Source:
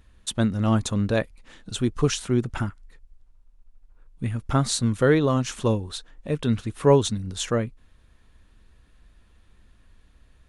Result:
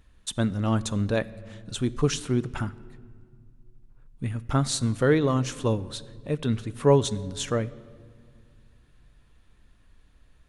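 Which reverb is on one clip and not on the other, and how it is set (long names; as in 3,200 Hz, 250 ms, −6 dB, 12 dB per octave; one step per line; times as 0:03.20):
rectangular room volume 3,500 cubic metres, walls mixed, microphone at 0.36 metres
level −2.5 dB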